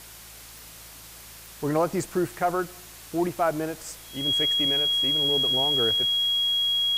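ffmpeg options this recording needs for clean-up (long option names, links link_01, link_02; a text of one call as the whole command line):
ffmpeg -i in.wav -af "adeclick=threshold=4,bandreject=frequency=55:width_type=h:width=4,bandreject=frequency=110:width_type=h:width=4,bandreject=frequency=165:width_type=h:width=4,bandreject=frequency=3300:width=30,afwtdn=0.0063" out.wav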